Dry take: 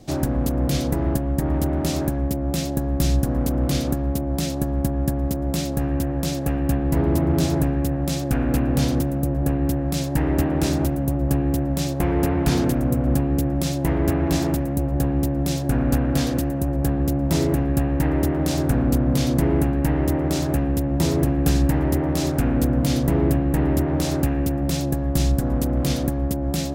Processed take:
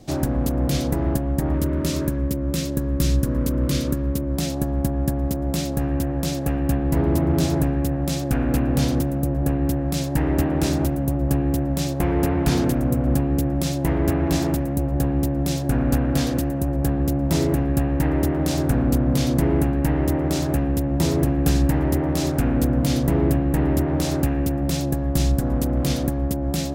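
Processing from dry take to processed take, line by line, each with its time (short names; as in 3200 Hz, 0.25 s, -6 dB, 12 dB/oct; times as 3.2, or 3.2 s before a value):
1.54–4.38 Butterworth band-stop 760 Hz, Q 2.8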